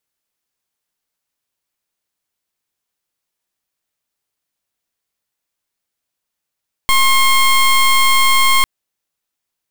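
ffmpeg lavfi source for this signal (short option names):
-f lavfi -i "aevalsrc='0.282*(2*lt(mod(1070*t,1),0.18)-1)':d=1.75:s=44100"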